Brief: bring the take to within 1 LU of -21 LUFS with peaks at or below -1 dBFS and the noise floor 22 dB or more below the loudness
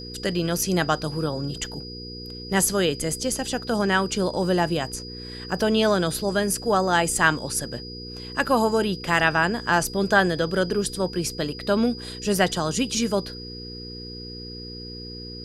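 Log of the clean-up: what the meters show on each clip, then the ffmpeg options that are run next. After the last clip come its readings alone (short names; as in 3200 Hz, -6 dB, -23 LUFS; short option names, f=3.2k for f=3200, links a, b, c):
hum 60 Hz; harmonics up to 480 Hz; hum level -36 dBFS; steady tone 4900 Hz; tone level -38 dBFS; loudness -23.5 LUFS; peak -3.0 dBFS; loudness target -21.0 LUFS
-> -af "bandreject=f=60:t=h:w=4,bandreject=f=120:t=h:w=4,bandreject=f=180:t=h:w=4,bandreject=f=240:t=h:w=4,bandreject=f=300:t=h:w=4,bandreject=f=360:t=h:w=4,bandreject=f=420:t=h:w=4,bandreject=f=480:t=h:w=4"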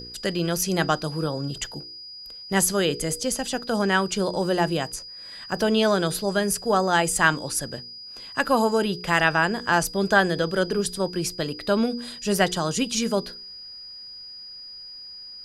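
hum none; steady tone 4900 Hz; tone level -38 dBFS
-> -af "bandreject=f=4.9k:w=30"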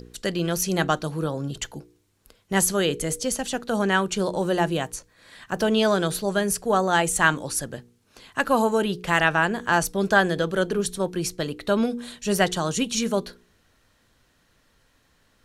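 steady tone none; loudness -24.0 LUFS; peak -3.0 dBFS; loudness target -21.0 LUFS
-> -af "volume=3dB,alimiter=limit=-1dB:level=0:latency=1"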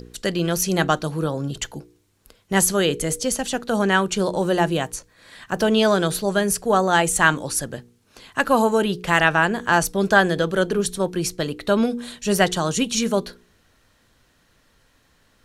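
loudness -21.0 LUFS; peak -1.0 dBFS; noise floor -61 dBFS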